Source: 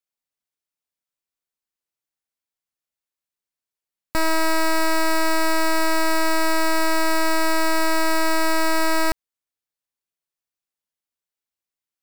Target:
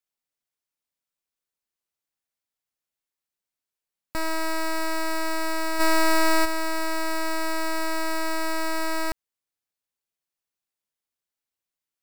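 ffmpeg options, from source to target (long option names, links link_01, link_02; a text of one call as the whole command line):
ffmpeg -i in.wav -filter_complex "[0:a]alimiter=level_in=0.5dB:limit=-24dB:level=0:latency=1,volume=-0.5dB,asplit=3[link_01][link_02][link_03];[link_01]afade=type=out:start_time=5.79:duration=0.02[link_04];[link_02]acontrast=75,afade=type=in:start_time=5.79:duration=0.02,afade=type=out:start_time=6.44:duration=0.02[link_05];[link_03]afade=type=in:start_time=6.44:duration=0.02[link_06];[link_04][link_05][link_06]amix=inputs=3:normalize=0" out.wav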